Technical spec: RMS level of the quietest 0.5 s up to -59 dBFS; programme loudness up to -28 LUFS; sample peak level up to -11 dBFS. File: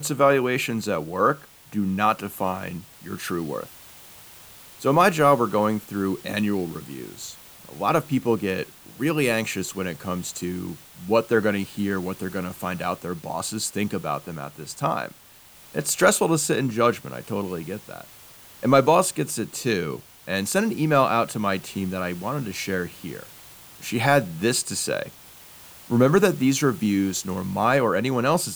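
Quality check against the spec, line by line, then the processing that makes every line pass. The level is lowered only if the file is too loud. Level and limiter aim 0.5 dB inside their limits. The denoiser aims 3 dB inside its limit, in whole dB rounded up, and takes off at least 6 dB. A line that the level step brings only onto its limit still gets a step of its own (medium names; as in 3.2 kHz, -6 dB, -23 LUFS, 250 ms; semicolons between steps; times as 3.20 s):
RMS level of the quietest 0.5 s -50 dBFS: fail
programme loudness -23.5 LUFS: fail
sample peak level -3.5 dBFS: fail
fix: noise reduction 7 dB, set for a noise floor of -50 dBFS; trim -5 dB; peak limiter -11.5 dBFS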